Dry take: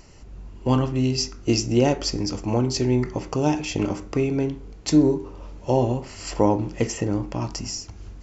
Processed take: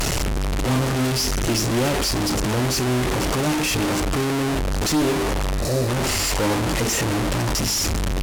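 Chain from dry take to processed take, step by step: delta modulation 64 kbps, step -17 dBFS; tube stage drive 22 dB, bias 0.7; spectral repair 5.59–5.86, 730–3800 Hz before; gain +5.5 dB

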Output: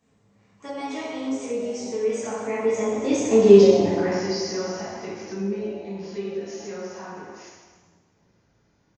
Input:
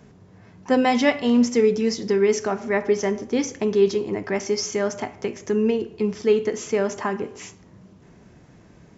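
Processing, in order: Doppler pass-by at 3.53, 30 m/s, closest 8.8 m; bell 2000 Hz -2.5 dB 1.5 oct; frequency-shifting echo 0.13 s, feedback 46%, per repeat +150 Hz, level -15 dB; plate-style reverb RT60 1.4 s, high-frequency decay 0.8×, DRR -10 dB; mismatched tape noise reduction encoder only; gain -3.5 dB

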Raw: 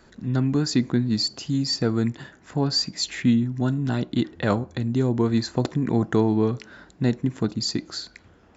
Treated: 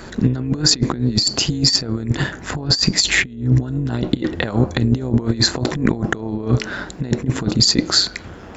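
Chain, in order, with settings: 1.82–4.36 low shelf 100 Hz +7.5 dB; negative-ratio compressor -28 dBFS, ratio -0.5; AM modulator 190 Hz, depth 35%; maximiser +15.5 dB; gain -1.5 dB

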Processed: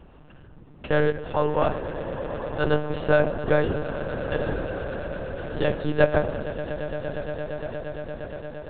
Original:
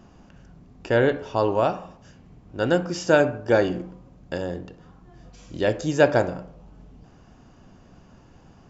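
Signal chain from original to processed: HPF 75 Hz 12 dB/oct; in parallel at +0.5 dB: compressor, threshold -29 dBFS, peak gain reduction 17 dB; on the sum: swelling echo 0.116 s, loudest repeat 8, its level -17 dB; monotone LPC vocoder at 8 kHz 150 Hz; gain -3.5 dB

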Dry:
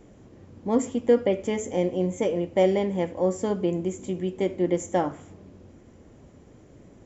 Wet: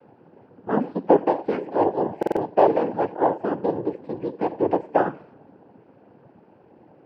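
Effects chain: speaker cabinet 150–2200 Hz, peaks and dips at 190 Hz -6 dB, 530 Hz +5 dB, 870 Hz +5 dB, 1600 Hz -5 dB; noise vocoder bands 8; stuck buffer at 2.18, samples 2048, times 3; gain +1 dB

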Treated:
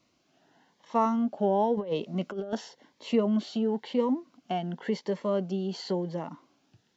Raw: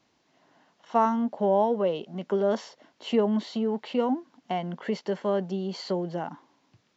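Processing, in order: 1.77–2.53 negative-ratio compressor -29 dBFS, ratio -0.5; cascading phaser rising 0.95 Hz

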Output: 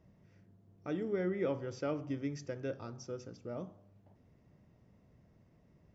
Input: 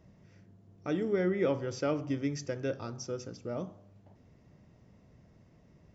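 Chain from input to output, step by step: high shelf 4100 Hz -6 dB; gain -5 dB

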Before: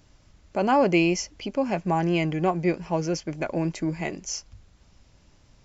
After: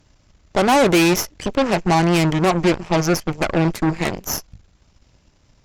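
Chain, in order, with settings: soft clip -16 dBFS, distortion -17 dB; added harmonics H 5 -37 dB, 7 -21 dB, 8 -14 dB, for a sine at -16 dBFS; gain +8 dB

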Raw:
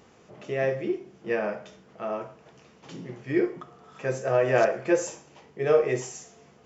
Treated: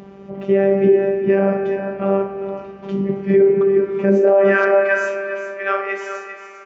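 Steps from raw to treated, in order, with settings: LPF 3100 Hz 12 dB/oct; tilt shelf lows +7 dB, about 650 Hz; robotiser 196 Hz; high-pass sweep 73 Hz -> 1400 Hz, 3.93–4.52; on a send: echo 0.4 s -10.5 dB; on the sum: spring tank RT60 3.8 s, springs 33/59 ms, chirp 50 ms, DRR 9 dB; maximiser +19.5 dB; gain -4.5 dB

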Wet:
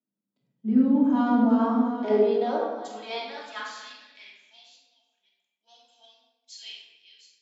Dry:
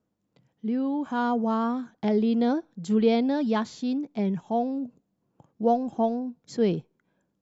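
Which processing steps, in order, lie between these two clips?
reverse delay 0.529 s, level -9 dB; high-pass sweep 200 Hz -> 2900 Hz, 1.14–4.47; shoebox room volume 1100 m³, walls mixed, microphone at 2.8 m; three-band expander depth 40%; gain -6.5 dB

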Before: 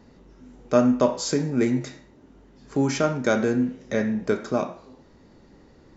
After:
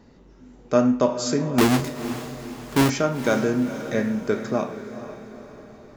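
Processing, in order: 1.58–2.9 half-waves squared off; diffused feedback echo 0.469 s, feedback 50%, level -11.5 dB

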